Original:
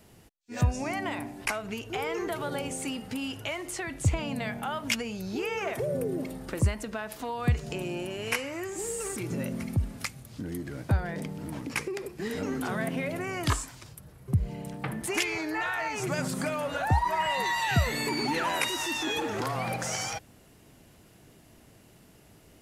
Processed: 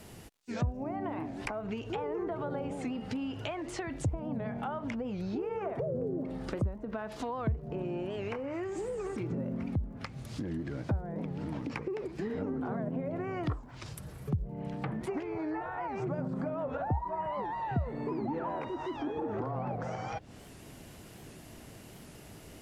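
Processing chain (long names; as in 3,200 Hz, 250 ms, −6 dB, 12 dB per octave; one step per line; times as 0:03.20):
treble cut that deepens with the level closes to 930 Hz, closed at −27 dBFS
dynamic equaliser 2,100 Hz, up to −6 dB, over −50 dBFS, Q 0.81
downward compressor 2 to 1, threshold −44 dBFS, peak gain reduction 13.5 dB
surface crackle 180 per second −69 dBFS
wow of a warped record 78 rpm, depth 160 cents
level +6 dB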